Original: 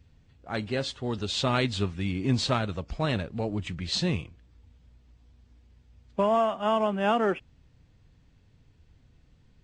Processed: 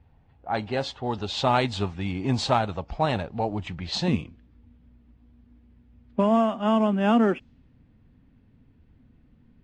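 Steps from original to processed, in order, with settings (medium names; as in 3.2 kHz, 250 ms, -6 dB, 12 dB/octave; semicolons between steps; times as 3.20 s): level-controlled noise filter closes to 2.3 kHz, open at -21 dBFS; peaking EQ 810 Hz +12.5 dB 0.63 oct, from 4.08 s 240 Hz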